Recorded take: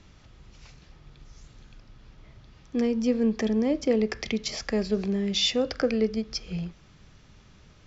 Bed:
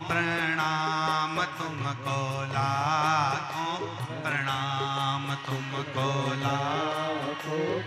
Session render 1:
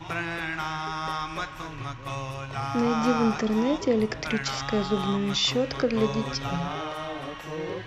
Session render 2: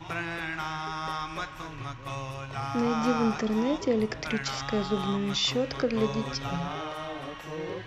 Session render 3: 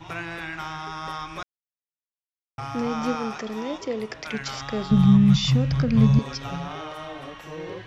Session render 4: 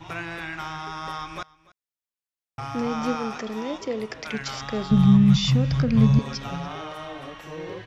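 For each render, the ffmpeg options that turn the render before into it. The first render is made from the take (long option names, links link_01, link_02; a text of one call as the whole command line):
ffmpeg -i in.wav -i bed.wav -filter_complex "[1:a]volume=-4dB[link_01];[0:a][link_01]amix=inputs=2:normalize=0" out.wav
ffmpeg -i in.wav -af "volume=-2.5dB" out.wav
ffmpeg -i in.wav -filter_complex "[0:a]asettb=1/sr,asplit=3[link_01][link_02][link_03];[link_01]atrim=end=3.154[link_04];[link_02]atrim=start=3.15:end=4.34,asetpts=PTS-STARTPTS,afade=type=in:duration=0.004:curve=qsin,afade=type=out:start_time=1.186:duration=0.004:curve=qsin,lowshelf=frequency=260:gain=-10[link_05];[link_03]atrim=start=4.336[link_06];[link_04][link_05]acrossfade=duration=0.004:curve1=hsin:curve2=qsin[link_07];[link_07][link_06]acrossfade=duration=0.004:curve1=qsin:curve2=hsin,asettb=1/sr,asplit=3[link_08][link_09][link_10];[link_08]atrim=end=4.914[link_11];[link_09]atrim=start=4.91:end=6.19,asetpts=PTS-STARTPTS,afade=type=in:duration=0.004:curve=qsin,afade=type=out:start_time=1.276:duration=0.004:curve=qsin,lowshelf=frequency=240:width_type=q:width=3:gain=14[link_12];[link_10]atrim=start=6.186[link_13];[link_11][link_12]acrossfade=duration=0.004:curve1=hsin:curve2=qsin[link_14];[link_14][link_13]acrossfade=duration=0.004:curve1=qsin:curve2=hsin,asplit=3[link_15][link_16][link_17];[link_15]atrim=end=1.43,asetpts=PTS-STARTPTS,afade=type=out:start_time=1.426:duration=0.004:curve=hsin[link_18];[link_16]atrim=start=1.43:end=2.58,asetpts=PTS-STARTPTS,volume=0[link_19];[link_17]atrim=start=2.58,asetpts=PTS-STARTPTS,afade=type=in:duration=0.004:curve=hsin[link_20];[link_18][link_19][link_20]concat=n=3:v=0:a=1" out.wav
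ffmpeg -i in.wav -af "aecho=1:1:290:0.075" out.wav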